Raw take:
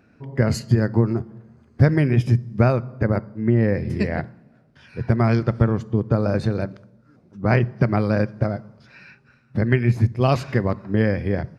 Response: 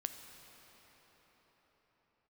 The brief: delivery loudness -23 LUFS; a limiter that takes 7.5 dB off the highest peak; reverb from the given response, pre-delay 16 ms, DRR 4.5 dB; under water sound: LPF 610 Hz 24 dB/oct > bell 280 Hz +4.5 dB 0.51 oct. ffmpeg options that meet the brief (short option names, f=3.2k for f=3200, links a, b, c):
-filter_complex "[0:a]alimiter=limit=-11.5dB:level=0:latency=1,asplit=2[a][b];[1:a]atrim=start_sample=2205,adelay=16[c];[b][c]afir=irnorm=-1:irlink=0,volume=-3.5dB[d];[a][d]amix=inputs=2:normalize=0,lowpass=f=610:w=0.5412,lowpass=f=610:w=1.3066,equalizer=f=280:t=o:w=0.51:g=4.5,volume=-1dB"